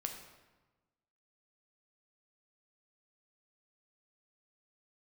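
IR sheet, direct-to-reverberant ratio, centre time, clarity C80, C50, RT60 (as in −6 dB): 3.0 dB, 30 ms, 8.0 dB, 6.0 dB, 1.2 s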